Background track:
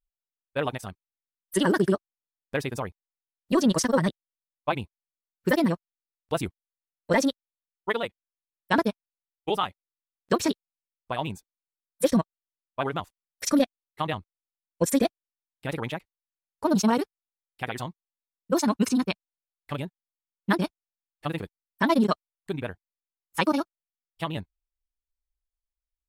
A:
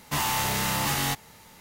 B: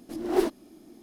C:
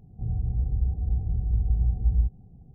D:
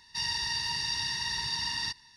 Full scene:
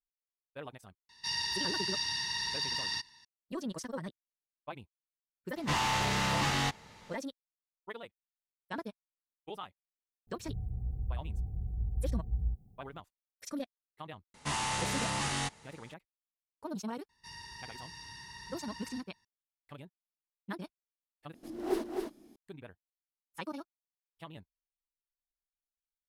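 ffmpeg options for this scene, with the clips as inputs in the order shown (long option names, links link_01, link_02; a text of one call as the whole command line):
ffmpeg -i bed.wav -i cue0.wav -i cue1.wav -i cue2.wav -i cue3.wav -filter_complex "[4:a]asplit=2[link_01][link_02];[1:a]asplit=2[link_03][link_04];[0:a]volume=-17dB[link_05];[link_01]lowshelf=frequency=100:gain=-8.5[link_06];[link_03]lowpass=5500[link_07];[3:a]aemphasis=mode=production:type=75fm[link_08];[link_04]aresample=22050,aresample=44100[link_09];[link_02]equalizer=frequency=4000:width_type=o:width=1.5:gain=-10.5[link_10];[2:a]aecho=1:1:259:0.596[link_11];[link_05]asplit=2[link_12][link_13];[link_12]atrim=end=21.344[link_14];[link_11]atrim=end=1.02,asetpts=PTS-STARTPTS,volume=-8.5dB[link_15];[link_13]atrim=start=22.356[link_16];[link_06]atrim=end=2.16,asetpts=PTS-STARTPTS,volume=-2.5dB,afade=type=in:duration=0.004:curve=hsin,afade=type=out:start_time=2.156:duration=0.004:curve=hsin,adelay=1090[link_17];[link_07]atrim=end=1.6,asetpts=PTS-STARTPTS,volume=-2.5dB,afade=type=in:duration=0.004:curve=hsin,afade=type=out:start_time=1.596:duration=0.004:curve=hsin,adelay=5560[link_18];[link_08]atrim=end=2.74,asetpts=PTS-STARTPTS,volume=-9.5dB,afade=type=in:duration=0.004:curve=hsin,afade=type=out:start_time=2.736:duration=0.004:curve=hsin,adelay=10270[link_19];[link_09]atrim=end=1.6,asetpts=PTS-STARTPTS,volume=-6.5dB,afade=type=in:duration=0.004:curve=hsin,afade=type=out:start_time=1.596:duration=0.004:curve=hsin,adelay=14340[link_20];[link_10]atrim=end=2.16,asetpts=PTS-STARTPTS,volume=-10dB,afade=type=in:duration=0.004:curve=hsin,afade=type=out:start_time=2.156:duration=0.004:curve=hsin,adelay=17090[link_21];[link_14][link_15]acrossfade=duration=0.004:curve1=hsin:curve2=hsin[link_22];[link_22][link_16]acrossfade=duration=0.004:curve1=hsin:curve2=hsin[link_23];[link_23][link_17][link_18][link_19][link_20][link_21]amix=inputs=6:normalize=0" out.wav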